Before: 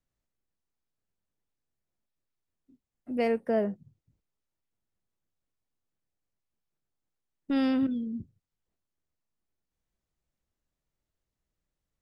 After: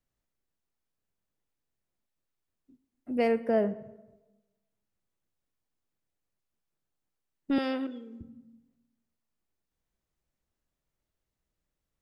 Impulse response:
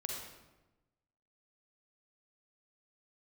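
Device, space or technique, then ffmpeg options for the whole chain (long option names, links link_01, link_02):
filtered reverb send: -filter_complex "[0:a]asplit=2[link_01][link_02];[link_02]highpass=160,lowpass=3600[link_03];[1:a]atrim=start_sample=2205[link_04];[link_03][link_04]afir=irnorm=-1:irlink=0,volume=-13dB[link_05];[link_01][link_05]amix=inputs=2:normalize=0,asettb=1/sr,asplit=3[link_06][link_07][link_08];[link_06]atrim=end=7.584[link_09];[link_07]atrim=start=7.58:end=8.21,asetpts=PTS-STARTPTS,afade=type=in:duration=0.004:curve=qsin,afade=type=out:start_time=0.626:duration=0.004:curve=qsin,highpass=frequency=340:width=0.5412,highpass=frequency=340:width=1.3066[link_10];[link_08]atrim=start=8.206[link_11];[link_09][link_10]acrossfade=duration=0.004:curve1=hsin:curve2=qsin[link_12];[link_12][link_11]acrossfade=duration=0.004:curve1=qsin:curve2=hsin"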